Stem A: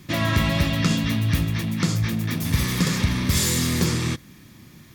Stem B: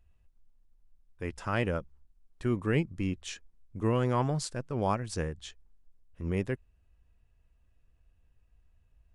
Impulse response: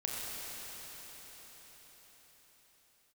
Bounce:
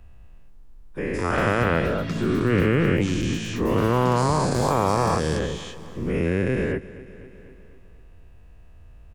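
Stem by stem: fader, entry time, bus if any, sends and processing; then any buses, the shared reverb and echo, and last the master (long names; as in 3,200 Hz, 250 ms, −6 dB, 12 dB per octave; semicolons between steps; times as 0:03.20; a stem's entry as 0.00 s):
−10.5 dB, 1.25 s, no send, echo send −14 dB, no processing
+3.0 dB, 0.00 s, no send, echo send −20 dB, every bin's largest magnitude spread in time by 480 ms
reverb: not used
echo: repeating echo 249 ms, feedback 47%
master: high-shelf EQ 2,400 Hz −8 dB; multiband upward and downward compressor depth 40%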